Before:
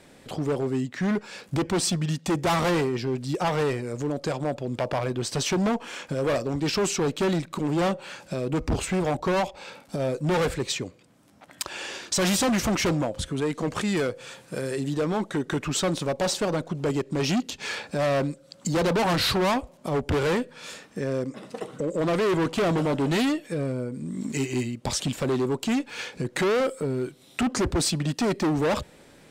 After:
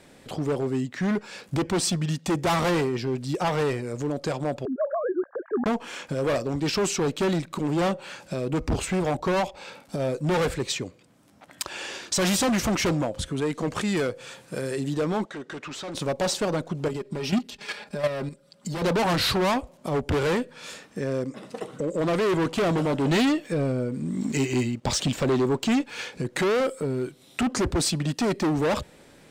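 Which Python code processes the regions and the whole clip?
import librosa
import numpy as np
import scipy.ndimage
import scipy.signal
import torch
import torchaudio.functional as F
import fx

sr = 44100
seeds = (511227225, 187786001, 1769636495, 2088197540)

y = fx.chain(x, sr, fx.sine_speech(),
    fx.cheby_ripple(hz=1700.0, ripple_db=3), at=(4.65, 5.66))
y = fx.chain(y, sr, fx.highpass(hz=580.0, slope=6),
    fx.clip_hard(threshold_db=-31.5),
    fx.air_absorb(metres=77.0), at=(15.25, 15.95))
y = fx.chain(y, sr, fx.peak_eq(hz=6700.0, db=-7.5, octaves=0.23),
    fx.comb(ms=4.9, depth=0.6),
    fx.level_steps(step_db=10), at=(16.88, 18.82))
y = fx.chain(y, sr, fx.peak_eq(hz=11000.0, db=-9.5, octaves=0.51),
    fx.leveller(passes=1), at=(23.05, 25.84))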